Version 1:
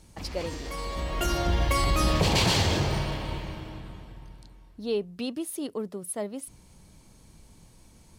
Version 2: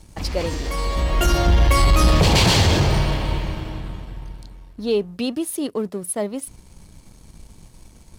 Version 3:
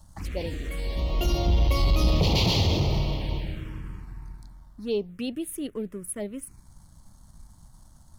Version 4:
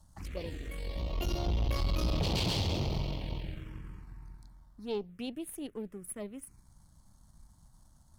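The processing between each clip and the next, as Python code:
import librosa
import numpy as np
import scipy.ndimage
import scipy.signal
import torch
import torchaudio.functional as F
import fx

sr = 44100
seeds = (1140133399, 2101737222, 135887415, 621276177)

y1 = fx.low_shelf(x, sr, hz=65.0, db=7.5)
y1 = fx.leveller(y1, sr, passes=1)
y1 = y1 * 10.0 ** (4.0 / 20.0)
y2 = fx.dmg_noise_colour(y1, sr, seeds[0], colour='brown', level_db=-48.0)
y2 = fx.env_phaser(y2, sr, low_hz=380.0, high_hz=1600.0, full_db=-17.0)
y2 = y2 * 10.0 ** (-6.0 / 20.0)
y3 = fx.tube_stage(y2, sr, drive_db=20.0, bias=0.65)
y3 = y3 * 10.0 ** (-4.5 / 20.0)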